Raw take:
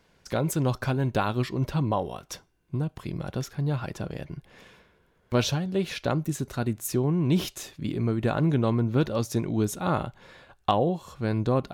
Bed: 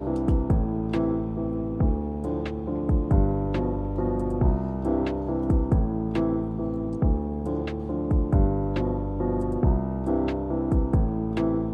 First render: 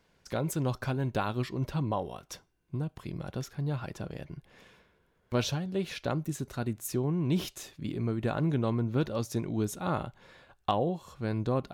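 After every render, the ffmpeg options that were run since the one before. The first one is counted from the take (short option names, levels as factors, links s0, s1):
-af "volume=0.562"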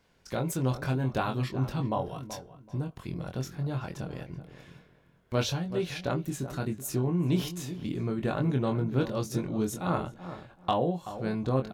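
-filter_complex "[0:a]asplit=2[s0][s1];[s1]adelay=23,volume=0.562[s2];[s0][s2]amix=inputs=2:normalize=0,asplit=2[s3][s4];[s4]adelay=380,lowpass=f=1400:p=1,volume=0.266,asplit=2[s5][s6];[s6]adelay=380,lowpass=f=1400:p=1,volume=0.24,asplit=2[s7][s8];[s8]adelay=380,lowpass=f=1400:p=1,volume=0.24[s9];[s3][s5][s7][s9]amix=inputs=4:normalize=0"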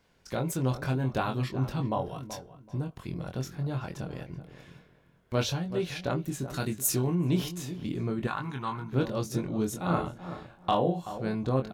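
-filter_complex "[0:a]asettb=1/sr,asplit=3[s0][s1][s2];[s0]atrim=end=6.544[s3];[s1]atrim=start=6.54:end=7.15,asetpts=PTS-STARTPTS,afade=t=in:d=0.004:c=qsin,afade=t=out:st=0.606:d=0.004:c=qsin,highshelf=f=2200:g=10.5[s4];[s2]atrim=start=7.146[s5];[s3][s4]acrossfade=d=0.004:c1=hsin:c2=qsin[s6];[s6][s5]acrossfade=d=0.004:c1=qsin:c2=hsin,asettb=1/sr,asplit=3[s7][s8][s9];[s7]atrim=end=8.274[s10];[s8]atrim=start=8.27:end=8.93,asetpts=PTS-STARTPTS,afade=t=in:d=0.004:c=qsin,afade=t=out:st=0.656:d=0.004:c=qsin,lowshelf=f=740:t=q:w=3:g=-9[s11];[s9]atrim=start=8.926[s12];[s10][s11]acrossfade=d=0.004:c1=hsin:c2=qsin[s13];[s13][s12]acrossfade=d=0.004:c1=qsin:c2=hsin,asettb=1/sr,asplit=3[s14][s15][s16];[s14]atrim=end=9.864[s17];[s15]atrim=start=9.86:end=11.18,asetpts=PTS-STARTPTS,afade=t=in:d=0.004:c=qsin,afade=t=out:st=1.316:d=0.004:c=qsin,asplit=2[s18][s19];[s19]adelay=35,volume=0.596[s20];[s18][s20]amix=inputs=2:normalize=0,atrim=end_sample=58212[s21];[s16]atrim=start=11.176[s22];[s17][s21]acrossfade=d=0.004:c1=hsin:c2=qsin[s23];[s23][s22]acrossfade=d=0.004:c1=qsin:c2=hsin"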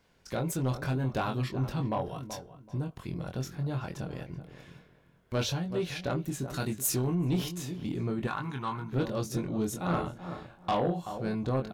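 -af "asoftclip=type=tanh:threshold=0.0891"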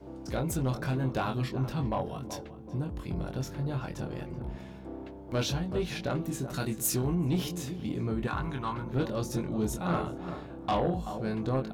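-filter_complex "[1:a]volume=0.141[s0];[0:a][s0]amix=inputs=2:normalize=0"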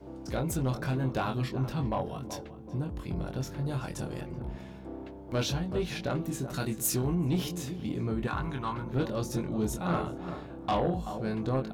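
-filter_complex "[0:a]asettb=1/sr,asplit=3[s0][s1][s2];[s0]atrim=end=3.654[s3];[s1]atrim=start=3.65:end=4.21,asetpts=PTS-STARTPTS,afade=t=in:d=0.004:c=qsin,afade=t=out:st=0.556:d=0.004:c=qsin,equalizer=f=9200:w=0.85:g=12[s4];[s2]atrim=start=4.206[s5];[s3][s4]acrossfade=d=0.004:c1=hsin:c2=qsin[s6];[s6][s5]acrossfade=d=0.004:c1=qsin:c2=hsin"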